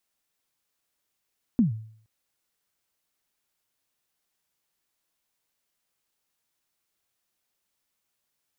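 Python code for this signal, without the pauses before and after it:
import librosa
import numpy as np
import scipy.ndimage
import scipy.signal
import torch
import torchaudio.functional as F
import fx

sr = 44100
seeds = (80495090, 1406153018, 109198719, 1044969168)

y = fx.drum_kick(sr, seeds[0], length_s=0.47, level_db=-14.0, start_hz=260.0, end_hz=110.0, sweep_ms=127.0, decay_s=0.57, click=False)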